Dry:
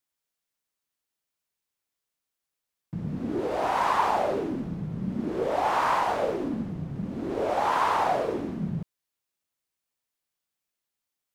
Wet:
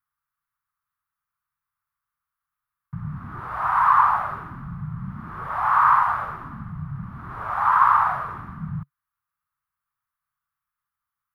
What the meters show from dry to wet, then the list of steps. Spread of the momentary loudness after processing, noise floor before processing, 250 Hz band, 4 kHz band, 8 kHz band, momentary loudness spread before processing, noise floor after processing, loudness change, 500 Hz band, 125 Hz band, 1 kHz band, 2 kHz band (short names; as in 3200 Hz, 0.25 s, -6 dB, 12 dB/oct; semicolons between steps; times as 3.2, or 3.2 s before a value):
19 LU, under -85 dBFS, -7.5 dB, under -10 dB, under -10 dB, 10 LU, under -85 dBFS, +8.0 dB, -15.5 dB, +2.5 dB, +6.5 dB, +6.0 dB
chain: EQ curve 140 Hz 0 dB, 290 Hz -24 dB, 520 Hz -27 dB, 1200 Hz +10 dB, 2600 Hz -13 dB, 7500 Hz -23 dB, 11000 Hz -8 dB; gain +5 dB